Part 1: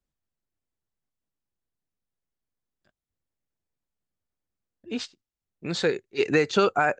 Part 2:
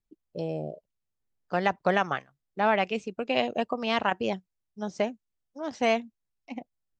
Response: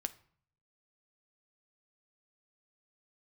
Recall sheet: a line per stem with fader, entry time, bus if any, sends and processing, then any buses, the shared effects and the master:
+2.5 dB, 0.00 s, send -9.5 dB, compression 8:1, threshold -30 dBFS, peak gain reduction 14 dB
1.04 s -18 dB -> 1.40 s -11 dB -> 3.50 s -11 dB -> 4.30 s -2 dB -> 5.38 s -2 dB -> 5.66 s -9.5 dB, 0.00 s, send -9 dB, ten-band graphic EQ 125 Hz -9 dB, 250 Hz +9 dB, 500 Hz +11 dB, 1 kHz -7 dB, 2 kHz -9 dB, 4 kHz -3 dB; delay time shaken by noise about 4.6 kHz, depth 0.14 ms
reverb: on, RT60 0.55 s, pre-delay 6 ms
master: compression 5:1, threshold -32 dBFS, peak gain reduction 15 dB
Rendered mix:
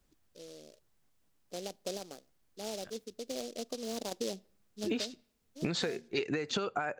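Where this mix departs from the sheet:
stem 1 +2.5 dB -> +10.5 dB; stem 2 -18.0 dB -> -29.0 dB

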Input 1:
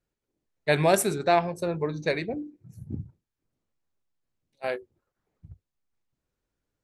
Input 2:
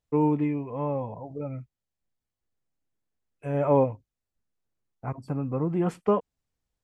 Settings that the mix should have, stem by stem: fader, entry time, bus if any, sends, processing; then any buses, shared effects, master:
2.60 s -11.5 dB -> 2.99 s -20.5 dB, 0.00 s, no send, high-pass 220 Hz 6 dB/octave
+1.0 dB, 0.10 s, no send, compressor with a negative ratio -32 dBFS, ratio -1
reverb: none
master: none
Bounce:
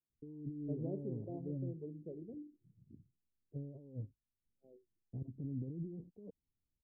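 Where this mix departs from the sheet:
stem 2 +1.0 dB -> -10.5 dB; master: extra inverse Chebyshev low-pass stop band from 1.3 kHz, stop band 60 dB

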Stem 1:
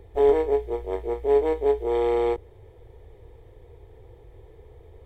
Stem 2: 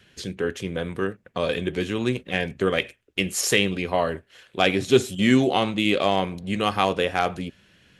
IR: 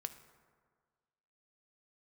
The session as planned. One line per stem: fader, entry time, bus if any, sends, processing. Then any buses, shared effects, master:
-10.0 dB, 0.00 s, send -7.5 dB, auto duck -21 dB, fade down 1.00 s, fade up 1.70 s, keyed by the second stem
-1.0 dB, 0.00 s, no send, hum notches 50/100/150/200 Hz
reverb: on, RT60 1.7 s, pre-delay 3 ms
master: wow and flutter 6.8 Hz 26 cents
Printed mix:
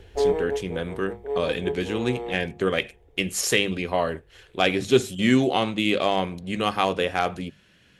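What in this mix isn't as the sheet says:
stem 1 -10.0 dB -> -2.0 dB; master: missing wow and flutter 6.8 Hz 26 cents

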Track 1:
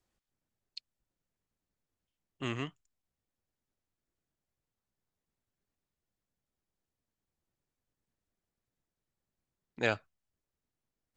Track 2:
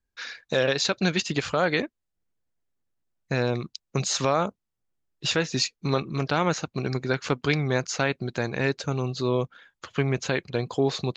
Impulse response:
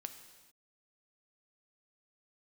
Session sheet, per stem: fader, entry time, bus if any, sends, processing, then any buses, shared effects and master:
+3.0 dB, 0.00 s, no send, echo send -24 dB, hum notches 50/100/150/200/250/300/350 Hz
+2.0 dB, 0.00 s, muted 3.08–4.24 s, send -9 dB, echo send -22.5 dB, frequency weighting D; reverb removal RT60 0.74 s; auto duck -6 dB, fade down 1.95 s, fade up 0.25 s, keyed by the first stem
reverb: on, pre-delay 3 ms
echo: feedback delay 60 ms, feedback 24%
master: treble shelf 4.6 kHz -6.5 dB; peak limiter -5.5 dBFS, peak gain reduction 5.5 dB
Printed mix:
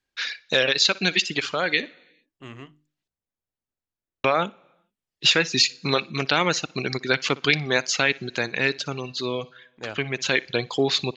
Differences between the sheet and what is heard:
stem 1 +3.0 dB -> -4.0 dB; stem 2: send -9 dB -> -17 dB

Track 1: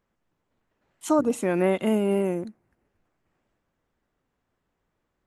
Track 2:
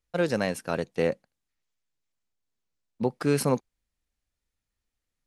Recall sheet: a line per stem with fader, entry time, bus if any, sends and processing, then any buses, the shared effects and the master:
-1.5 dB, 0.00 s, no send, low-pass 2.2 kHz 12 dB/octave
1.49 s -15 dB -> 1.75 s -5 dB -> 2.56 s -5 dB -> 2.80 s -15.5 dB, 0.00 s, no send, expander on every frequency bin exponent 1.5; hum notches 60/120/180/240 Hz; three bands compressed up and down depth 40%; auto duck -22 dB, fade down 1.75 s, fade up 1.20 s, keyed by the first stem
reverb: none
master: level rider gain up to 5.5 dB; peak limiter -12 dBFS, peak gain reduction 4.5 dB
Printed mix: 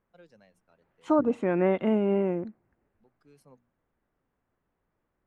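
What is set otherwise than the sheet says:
stem 2 -15.0 dB -> -25.0 dB; master: missing level rider gain up to 5.5 dB

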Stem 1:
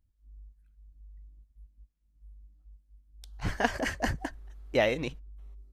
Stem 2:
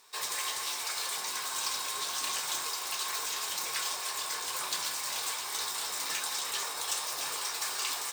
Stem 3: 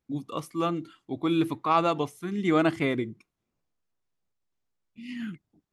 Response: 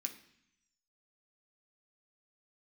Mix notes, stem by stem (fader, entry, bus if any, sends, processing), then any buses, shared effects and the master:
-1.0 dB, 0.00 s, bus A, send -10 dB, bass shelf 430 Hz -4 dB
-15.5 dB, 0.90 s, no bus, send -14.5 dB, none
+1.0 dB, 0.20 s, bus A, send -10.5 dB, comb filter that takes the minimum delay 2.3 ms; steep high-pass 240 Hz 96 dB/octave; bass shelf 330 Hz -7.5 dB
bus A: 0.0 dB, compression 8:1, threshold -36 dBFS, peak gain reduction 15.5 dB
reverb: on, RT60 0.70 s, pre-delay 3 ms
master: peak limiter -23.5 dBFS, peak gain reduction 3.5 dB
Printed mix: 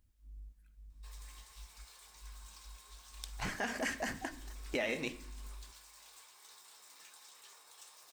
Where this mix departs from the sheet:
stem 1 -1.0 dB -> +5.5 dB; stem 2 -15.5 dB -> -24.5 dB; stem 3: muted

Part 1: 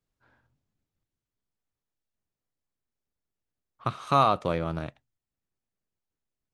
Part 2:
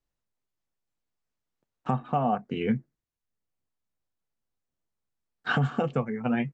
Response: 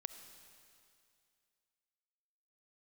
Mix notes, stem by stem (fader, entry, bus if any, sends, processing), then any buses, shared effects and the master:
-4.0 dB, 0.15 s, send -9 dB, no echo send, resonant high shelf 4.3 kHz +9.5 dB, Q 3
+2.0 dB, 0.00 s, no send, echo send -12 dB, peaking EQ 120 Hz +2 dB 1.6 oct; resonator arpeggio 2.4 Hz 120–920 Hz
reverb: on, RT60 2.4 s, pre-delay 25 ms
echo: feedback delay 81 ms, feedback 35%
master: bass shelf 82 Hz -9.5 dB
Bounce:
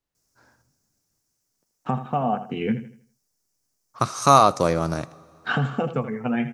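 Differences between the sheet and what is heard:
stem 1 -4.0 dB -> +6.0 dB; stem 2: missing resonator arpeggio 2.4 Hz 120–920 Hz

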